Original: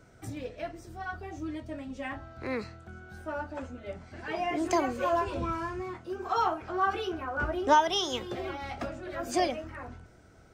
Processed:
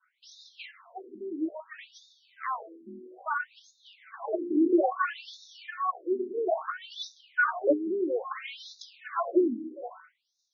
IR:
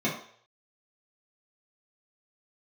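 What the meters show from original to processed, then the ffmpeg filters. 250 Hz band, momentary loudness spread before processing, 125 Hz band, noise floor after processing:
+4.5 dB, 14 LU, under -20 dB, -76 dBFS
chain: -af "agate=range=-33dB:threshold=-47dB:ratio=3:detection=peak,equalizer=f=1.1k:w=6.5:g=11.5,afftfilt=real='re*between(b*sr/1024,280*pow(5000/280,0.5+0.5*sin(2*PI*0.6*pts/sr))/1.41,280*pow(5000/280,0.5+0.5*sin(2*PI*0.6*pts/sr))*1.41)':imag='im*between(b*sr/1024,280*pow(5000/280,0.5+0.5*sin(2*PI*0.6*pts/sr))/1.41,280*pow(5000/280,0.5+0.5*sin(2*PI*0.6*pts/sr))*1.41)':win_size=1024:overlap=0.75,volume=8.5dB"

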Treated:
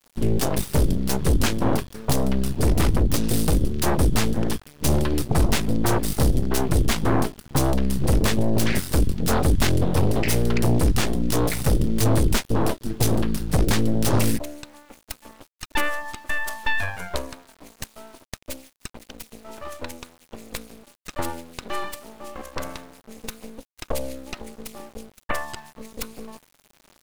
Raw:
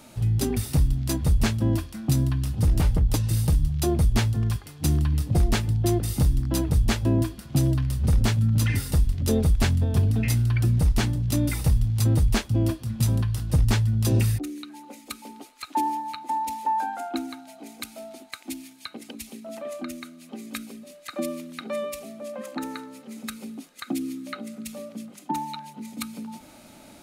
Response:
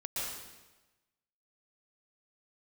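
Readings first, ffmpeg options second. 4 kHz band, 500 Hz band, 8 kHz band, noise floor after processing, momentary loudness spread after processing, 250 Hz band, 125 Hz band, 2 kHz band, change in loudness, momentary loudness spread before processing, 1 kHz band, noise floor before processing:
+4.5 dB, +6.0 dB, +5.0 dB, -62 dBFS, 18 LU, +3.0 dB, -2.5 dB, +7.0 dB, +1.0 dB, 17 LU, +1.0 dB, -49 dBFS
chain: -af "aeval=exprs='0.282*(cos(1*acos(clip(val(0)/0.282,-1,1)))-cos(1*PI/2))+0.0708*(cos(7*acos(clip(val(0)/0.282,-1,1)))-cos(7*PI/2))+0.1*(cos(8*acos(clip(val(0)/0.282,-1,1)))-cos(8*PI/2))':c=same,aeval=exprs='val(0)*gte(abs(val(0)),0.0075)':c=same,volume=-2dB"

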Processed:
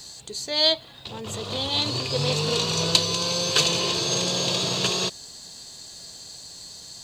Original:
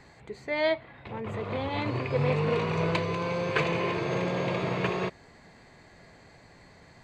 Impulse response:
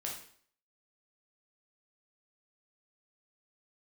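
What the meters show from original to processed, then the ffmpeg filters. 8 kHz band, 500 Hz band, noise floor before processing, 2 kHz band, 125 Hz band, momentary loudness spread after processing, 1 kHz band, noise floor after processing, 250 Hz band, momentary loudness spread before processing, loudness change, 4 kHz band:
+27.0 dB, 0.0 dB, -55 dBFS, 0.0 dB, 0.0 dB, 19 LU, 0.0 dB, -44 dBFS, 0.0 dB, 9 LU, +6.5 dB, +19.0 dB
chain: -af "aexciter=amount=13.5:drive=7.2:freq=3.3k,equalizer=f=2.2k:w=4.6:g=-4.5"

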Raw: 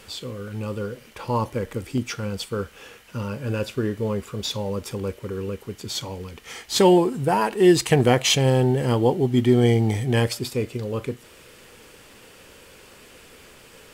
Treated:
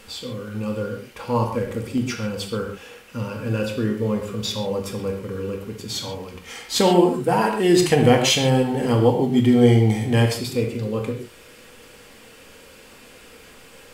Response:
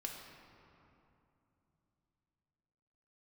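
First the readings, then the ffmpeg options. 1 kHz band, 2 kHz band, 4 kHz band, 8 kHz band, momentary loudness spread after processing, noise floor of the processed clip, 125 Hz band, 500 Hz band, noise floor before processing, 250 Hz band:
+1.5 dB, +1.5 dB, +1.5 dB, +1.0 dB, 16 LU, -47 dBFS, +1.5 dB, +1.5 dB, -49 dBFS, +2.5 dB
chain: -filter_complex "[1:a]atrim=start_sample=2205,afade=t=out:st=0.2:d=0.01,atrim=end_sample=9261[a];[0:a][a]afir=irnorm=-1:irlink=0,volume=4dB"

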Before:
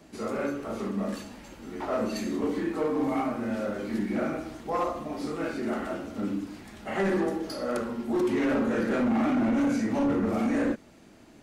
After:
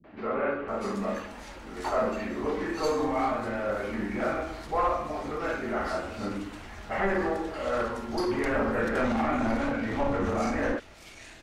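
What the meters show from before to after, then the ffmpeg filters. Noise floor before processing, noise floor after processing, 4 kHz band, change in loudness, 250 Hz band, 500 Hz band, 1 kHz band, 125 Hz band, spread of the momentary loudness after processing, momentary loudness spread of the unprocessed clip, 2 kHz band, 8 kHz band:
-53 dBFS, -48 dBFS, +1.0 dB, -0.5 dB, -4.5 dB, +1.0 dB, +4.0 dB, 0.0 dB, 9 LU, 10 LU, +4.0 dB, -0.5 dB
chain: -filter_complex "[0:a]asplit=2[a][b];[b]highpass=f=720:p=1,volume=8dB,asoftclip=type=tanh:threshold=-21dB[c];[a][c]amix=inputs=2:normalize=0,lowpass=f=3k:p=1,volume=-6dB,asubboost=boost=5.5:cutoff=85,acrossover=split=240|2900[d][e][f];[e]adelay=40[g];[f]adelay=680[h];[d][g][h]amix=inputs=3:normalize=0,volume=3.5dB"

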